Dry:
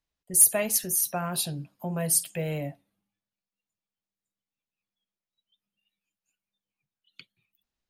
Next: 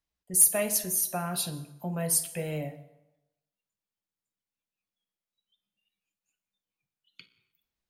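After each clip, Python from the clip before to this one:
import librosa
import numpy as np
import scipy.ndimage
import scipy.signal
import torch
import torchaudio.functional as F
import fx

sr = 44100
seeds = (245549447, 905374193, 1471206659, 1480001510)

y = fx.rev_fdn(x, sr, rt60_s=0.96, lf_ratio=0.9, hf_ratio=0.75, size_ms=96.0, drr_db=8.0)
y = F.gain(torch.from_numpy(y), -2.5).numpy()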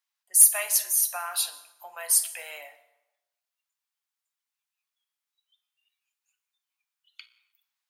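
y = scipy.signal.sosfilt(scipy.signal.butter(4, 880.0, 'highpass', fs=sr, output='sos'), x)
y = F.gain(torch.from_numpy(y), 4.5).numpy()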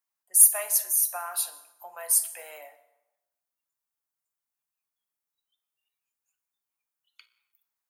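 y = fx.peak_eq(x, sr, hz=3300.0, db=-12.0, octaves=2.2)
y = F.gain(torch.from_numpy(y), 2.5).numpy()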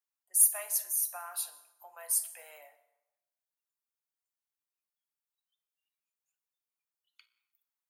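y = fx.highpass(x, sr, hz=470.0, slope=6)
y = F.gain(torch.from_numpy(y), -7.0).numpy()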